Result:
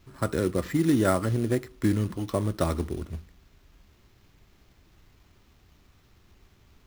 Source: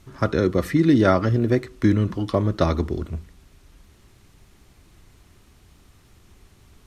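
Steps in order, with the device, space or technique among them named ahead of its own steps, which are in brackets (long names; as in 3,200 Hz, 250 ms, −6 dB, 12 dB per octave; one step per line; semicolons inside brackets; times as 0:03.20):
early companding sampler (sample-rate reduction 9,400 Hz, jitter 0%; log-companded quantiser 6 bits)
level −6 dB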